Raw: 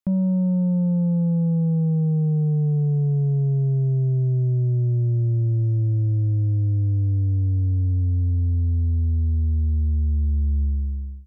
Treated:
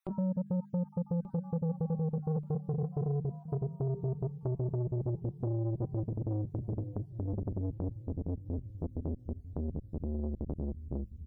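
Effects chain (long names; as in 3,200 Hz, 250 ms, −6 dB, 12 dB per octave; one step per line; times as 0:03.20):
time-frequency cells dropped at random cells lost 51%
mains-hum notches 50/100/150/200/250/300/350/400/450 Hz
reverb reduction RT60 0.69 s
notch filter 750 Hz, Q 12
comb filter 5.2 ms, depth 51%
dynamic equaliser 340 Hz, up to −7 dB, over −45 dBFS, Q 2.6
brickwall limiter −24 dBFS, peak gain reduction 10.5 dB
downward compressor 5 to 1, threshold −30 dBFS, peak gain reduction 4.5 dB
on a send: repeating echo 1,183 ms, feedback 50%, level −16 dB
on the sum: saturating transformer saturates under 360 Hz
level +3.5 dB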